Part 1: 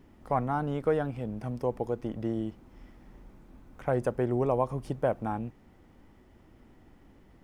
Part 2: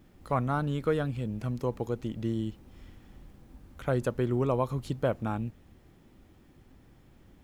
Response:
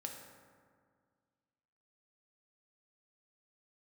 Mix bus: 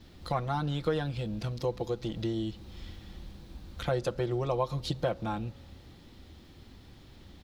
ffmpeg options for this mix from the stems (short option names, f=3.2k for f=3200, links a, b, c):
-filter_complex "[0:a]lowpass=f=5.7k:t=q:w=2.5,volume=-5dB[a];[1:a]equalizer=f=76:t=o:w=0.45:g=8,acompressor=threshold=-34dB:ratio=6,adelay=5.5,volume=1.5dB,asplit=2[b][c];[c]volume=-13.5dB[d];[2:a]atrim=start_sample=2205[e];[d][e]afir=irnorm=-1:irlink=0[f];[a][b][f]amix=inputs=3:normalize=0,equalizer=f=4k:t=o:w=0.86:g=14"